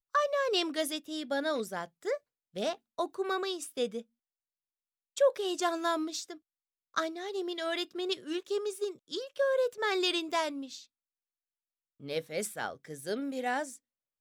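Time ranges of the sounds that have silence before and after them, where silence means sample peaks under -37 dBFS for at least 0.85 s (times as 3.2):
5.17–10.78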